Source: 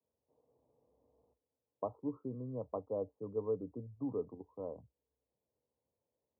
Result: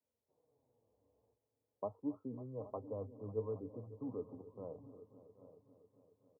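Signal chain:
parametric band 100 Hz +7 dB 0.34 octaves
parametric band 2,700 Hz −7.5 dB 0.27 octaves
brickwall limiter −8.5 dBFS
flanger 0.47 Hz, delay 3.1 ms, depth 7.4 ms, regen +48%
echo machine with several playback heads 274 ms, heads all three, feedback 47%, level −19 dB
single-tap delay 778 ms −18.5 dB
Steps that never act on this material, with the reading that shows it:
parametric band 2,700 Hz: nothing at its input above 1,100 Hz
brickwall limiter −8.5 dBFS: peak of its input −24.0 dBFS

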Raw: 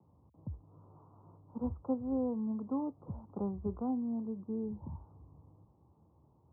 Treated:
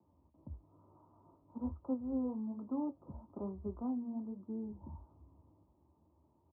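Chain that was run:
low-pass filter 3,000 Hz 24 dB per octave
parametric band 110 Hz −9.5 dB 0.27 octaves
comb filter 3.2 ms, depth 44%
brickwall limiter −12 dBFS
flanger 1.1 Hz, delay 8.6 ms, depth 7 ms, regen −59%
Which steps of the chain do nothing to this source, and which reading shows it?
low-pass filter 3,000 Hz: nothing at its input above 1,100 Hz
brickwall limiter −12 dBFS: peak of its input −22.0 dBFS

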